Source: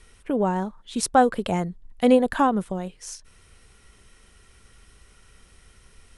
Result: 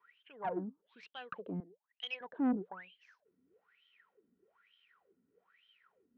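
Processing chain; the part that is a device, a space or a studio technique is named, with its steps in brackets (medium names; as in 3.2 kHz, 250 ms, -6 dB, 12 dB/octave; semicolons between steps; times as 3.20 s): wah-wah guitar rig (wah-wah 1.1 Hz 250–3200 Hz, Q 18; valve stage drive 33 dB, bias 0.45; cabinet simulation 100–4200 Hz, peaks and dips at 180 Hz +9 dB, 440 Hz +6 dB, 1.6 kHz +4 dB); 1.60–2.21 s: high-pass 540 Hz 12 dB/octave; trim +4.5 dB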